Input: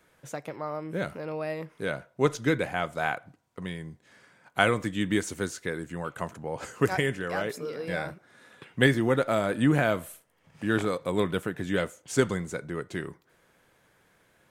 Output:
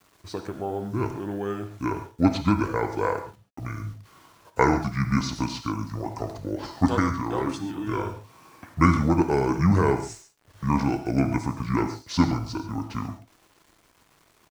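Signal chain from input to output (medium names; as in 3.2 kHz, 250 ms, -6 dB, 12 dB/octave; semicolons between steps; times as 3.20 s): pitch shift -7.5 st; word length cut 10-bit, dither none; gated-style reverb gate 160 ms flat, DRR 7 dB; trim +3 dB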